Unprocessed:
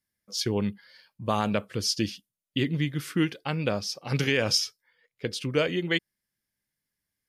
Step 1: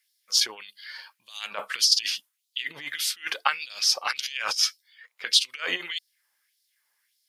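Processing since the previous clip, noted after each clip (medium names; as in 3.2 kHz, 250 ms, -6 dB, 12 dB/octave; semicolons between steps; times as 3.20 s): compressor with a negative ratio -30 dBFS, ratio -0.5; LFO high-pass sine 1.7 Hz 840–4300 Hz; trim +7 dB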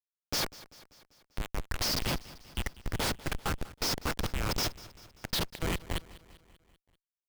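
Schmitt trigger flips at -24.5 dBFS; feedback delay 195 ms, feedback 58%, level -19 dB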